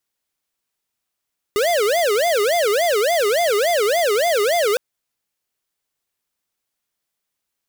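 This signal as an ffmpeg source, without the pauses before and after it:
ffmpeg -f lavfi -i "aevalsrc='0.133*(2*lt(mod((552.5*t-149.5/(2*PI*3.5)*sin(2*PI*3.5*t)),1),0.5)-1)':duration=3.21:sample_rate=44100" out.wav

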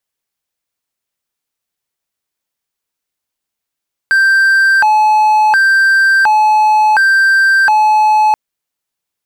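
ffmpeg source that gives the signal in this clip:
ffmpeg -f lavfi -i "aevalsrc='0.596*(1-4*abs(mod((1213.5*t+356.5/0.7*(0.5-abs(mod(0.7*t,1)-0.5)))+0.25,1)-0.5))':duration=4.23:sample_rate=44100" out.wav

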